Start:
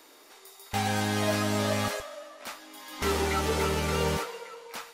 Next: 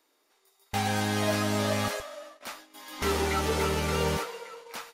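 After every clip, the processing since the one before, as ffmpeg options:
-af "bandreject=f=7700:w=27,agate=range=0.158:threshold=0.00501:ratio=16:detection=peak"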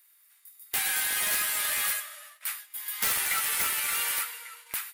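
-af "highpass=f=1800:t=q:w=1.6,aexciter=amount=6:drive=6.5:freq=8400,aeval=exprs='(mod(7.94*val(0)+1,2)-1)/7.94':c=same"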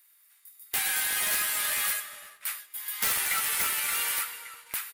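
-filter_complex "[0:a]asplit=2[s0][s1];[s1]adelay=357,lowpass=f=940:p=1,volume=0.188,asplit=2[s2][s3];[s3]adelay=357,lowpass=f=940:p=1,volume=0.29,asplit=2[s4][s5];[s5]adelay=357,lowpass=f=940:p=1,volume=0.29[s6];[s0][s2][s4][s6]amix=inputs=4:normalize=0"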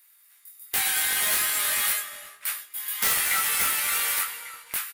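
-filter_complex "[0:a]asplit=2[s0][s1];[s1]adelay=22,volume=0.562[s2];[s0][s2]amix=inputs=2:normalize=0,volume=1.33"

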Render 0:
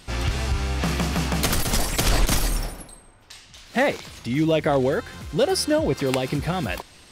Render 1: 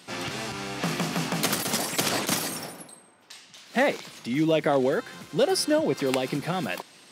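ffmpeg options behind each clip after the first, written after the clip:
-af "highpass=f=160:w=0.5412,highpass=f=160:w=1.3066,volume=0.794"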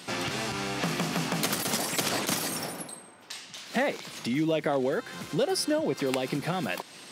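-af "acompressor=threshold=0.0141:ratio=2,volume=1.88"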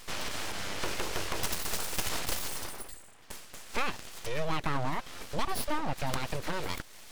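-af "aeval=exprs='abs(val(0))':c=same,volume=0.841"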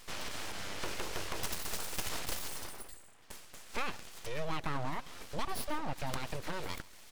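-af "aecho=1:1:135:0.0891,volume=0.562"

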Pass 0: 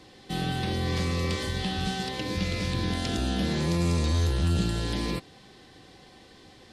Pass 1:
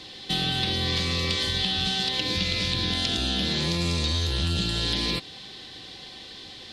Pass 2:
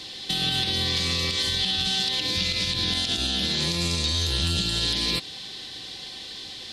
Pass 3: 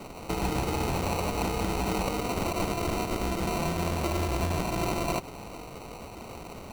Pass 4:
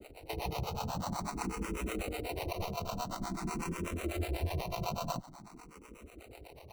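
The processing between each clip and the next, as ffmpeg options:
-af "equalizer=f=3700:w=1:g=14,acompressor=threshold=0.0501:ratio=4,volume=1.41"
-af "highshelf=f=3700:g=9.5,alimiter=limit=0.188:level=0:latency=1:release=81"
-af "acrusher=samples=26:mix=1:aa=0.000001,volume=0.668"
-filter_complex "[0:a]aeval=exprs='sgn(val(0))*max(abs(val(0))-0.00316,0)':c=same,acrossover=split=440[s0][s1];[s0]aeval=exprs='val(0)*(1-1/2+1/2*cos(2*PI*8.1*n/s))':c=same[s2];[s1]aeval=exprs='val(0)*(1-1/2-1/2*cos(2*PI*8.1*n/s))':c=same[s3];[s2][s3]amix=inputs=2:normalize=0,asplit=2[s4][s5];[s5]afreqshift=0.48[s6];[s4][s6]amix=inputs=2:normalize=1"

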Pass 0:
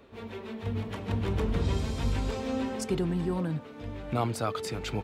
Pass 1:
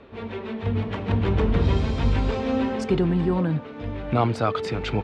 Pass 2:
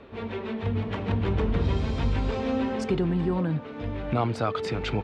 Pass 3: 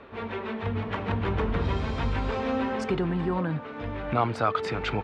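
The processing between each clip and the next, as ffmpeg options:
-af "lowpass=3600,volume=2.37"
-af "acompressor=threshold=0.0398:ratio=1.5"
-af "equalizer=f=1300:t=o:w=2.1:g=8,volume=0.708"

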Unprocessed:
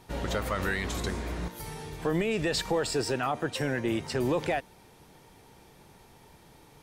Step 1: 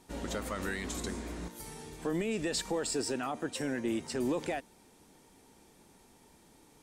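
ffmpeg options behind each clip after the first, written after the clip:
-af "equalizer=f=125:t=o:w=1:g=-6,equalizer=f=250:t=o:w=1:g=8,equalizer=f=8000:t=o:w=1:g=9,volume=0.422"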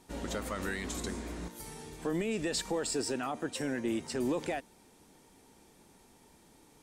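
-af anull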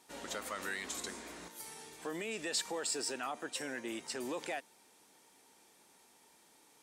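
-af "highpass=f=880:p=1"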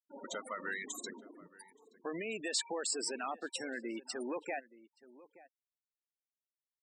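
-filter_complex "[0:a]afftfilt=real='re*gte(hypot(re,im),0.0141)':imag='im*gte(hypot(re,im),0.0141)':win_size=1024:overlap=0.75,asplit=2[s0][s1];[s1]adelay=874.6,volume=0.112,highshelf=f=4000:g=-19.7[s2];[s0][s2]amix=inputs=2:normalize=0,volume=1.12"

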